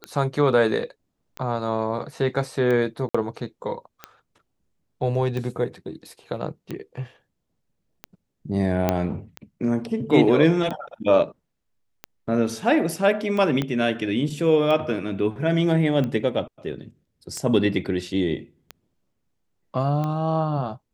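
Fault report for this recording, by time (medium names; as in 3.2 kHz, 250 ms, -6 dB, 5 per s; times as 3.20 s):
tick 45 rpm -17 dBFS
3.09–3.15 s: dropout 55 ms
8.89 s: pop -7 dBFS
13.62 s: pop -12 dBFS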